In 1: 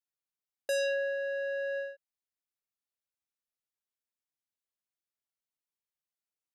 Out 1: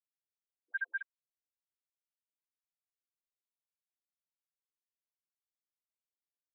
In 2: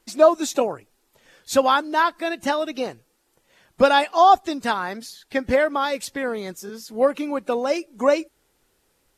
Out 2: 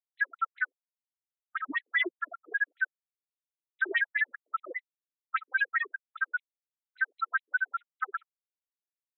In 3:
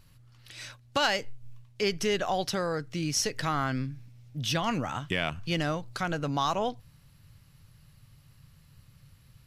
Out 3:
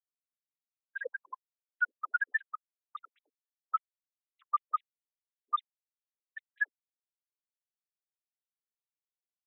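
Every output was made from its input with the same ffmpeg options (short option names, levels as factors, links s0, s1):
-af "afftfilt=real='real(if(lt(b,960),b+48*(1-2*mod(floor(b/48),2)),b),0)':imag='imag(if(lt(b,960),b+48*(1-2*mod(floor(b/48),2)),b),0)':win_size=2048:overlap=0.75,highpass=250,afftfilt=real='re*gte(hypot(re,im),0.355)':imag='im*gte(hypot(re,im),0.355)':win_size=1024:overlap=0.75,lowpass=f=5100:w=0.5412,lowpass=f=5100:w=1.3066,bandreject=f=3300:w=21,dynaudnorm=f=300:g=13:m=4.47,asoftclip=type=tanh:threshold=0.531,acrusher=bits=8:mix=0:aa=0.000001,asoftclip=type=hard:threshold=0.0891,afftfilt=real='re*between(b*sr/1024,340*pow(2900/340,0.5+0.5*sin(2*PI*5*pts/sr))/1.41,340*pow(2900/340,0.5+0.5*sin(2*PI*5*pts/sr))*1.41)':imag='im*between(b*sr/1024,340*pow(2900/340,0.5+0.5*sin(2*PI*5*pts/sr))/1.41,340*pow(2900/340,0.5+0.5*sin(2*PI*5*pts/sr))*1.41)':win_size=1024:overlap=0.75"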